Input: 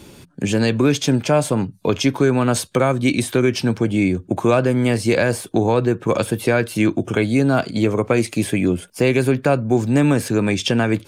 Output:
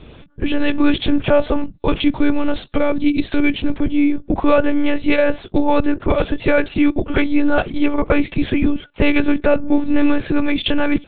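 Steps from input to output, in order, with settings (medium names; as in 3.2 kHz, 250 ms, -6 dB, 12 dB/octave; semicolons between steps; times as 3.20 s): monotone LPC vocoder at 8 kHz 290 Hz; 1.93–3.95 s: dynamic bell 1.2 kHz, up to -6 dB, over -32 dBFS, Q 0.72; trim +3 dB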